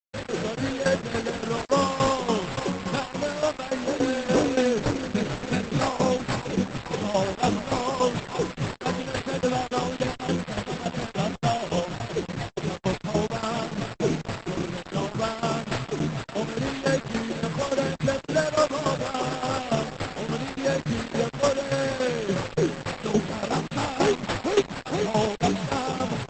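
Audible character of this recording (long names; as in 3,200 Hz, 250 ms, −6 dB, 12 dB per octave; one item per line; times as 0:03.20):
aliases and images of a low sample rate 6,200 Hz, jitter 0%
tremolo saw down 3.5 Hz, depth 80%
a quantiser's noise floor 6 bits, dither none
Opus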